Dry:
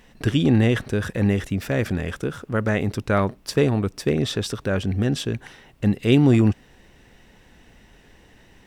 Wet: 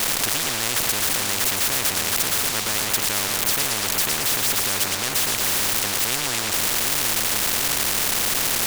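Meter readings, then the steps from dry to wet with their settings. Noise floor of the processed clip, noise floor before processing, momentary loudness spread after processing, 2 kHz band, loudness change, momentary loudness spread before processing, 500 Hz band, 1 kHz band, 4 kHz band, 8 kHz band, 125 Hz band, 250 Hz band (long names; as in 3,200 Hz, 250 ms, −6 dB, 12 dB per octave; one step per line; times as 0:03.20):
−26 dBFS, −53 dBFS, 1 LU, +6.0 dB, +2.5 dB, 9 LU, −8.0 dB, +5.5 dB, +12.0 dB, +21.5 dB, −14.5 dB, −14.0 dB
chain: converter with a step at zero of −25.5 dBFS
on a send: echo with a time of its own for lows and highs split 390 Hz, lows 743 ms, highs 112 ms, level −9 dB
on the sum: every bin compressed towards the loudest bin 10 to 1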